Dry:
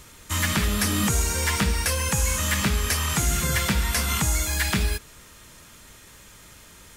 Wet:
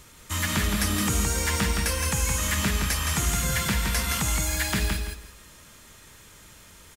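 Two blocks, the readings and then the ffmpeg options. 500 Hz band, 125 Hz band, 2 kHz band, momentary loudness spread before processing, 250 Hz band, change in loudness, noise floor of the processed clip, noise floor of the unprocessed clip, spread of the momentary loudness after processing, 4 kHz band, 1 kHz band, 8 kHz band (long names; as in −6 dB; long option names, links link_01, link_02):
−1.5 dB, −2.0 dB, −1.5 dB, 2 LU, −1.5 dB, −1.5 dB, −51 dBFS, −49 dBFS, 5 LU, −1.5 dB, −1.5 dB, −1.5 dB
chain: -af "aecho=1:1:167|334|501:0.596|0.125|0.0263,volume=-3dB"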